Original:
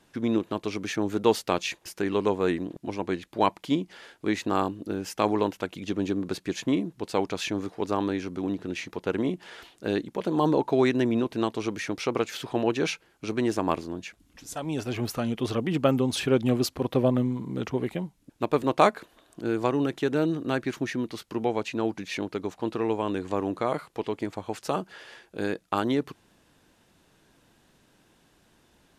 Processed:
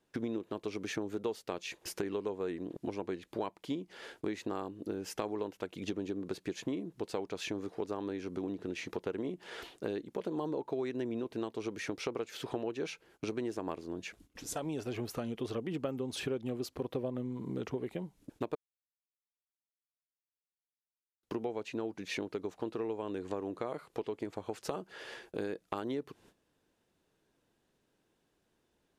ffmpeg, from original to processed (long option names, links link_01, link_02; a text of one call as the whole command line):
ffmpeg -i in.wav -filter_complex "[0:a]asplit=3[link_01][link_02][link_03];[link_01]atrim=end=18.55,asetpts=PTS-STARTPTS,afade=type=out:start_time=18.546:duration=0.004:curve=hsin[link_04];[link_02]atrim=start=18.55:end=21.23,asetpts=PTS-STARTPTS,volume=0[link_05];[link_03]atrim=start=21.23,asetpts=PTS-STARTPTS,afade=type=in:duration=0.004:curve=hsin[link_06];[link_04][link_05][link_06]concat=n=3:v=0:a=1,agate=range=-16dB:threshold=-57dB:ratio=16:detection=peak,equalizer=frequency=430:width=1.6:gain=6,acompressor=threshold=-35dB:ratio=5" out.wav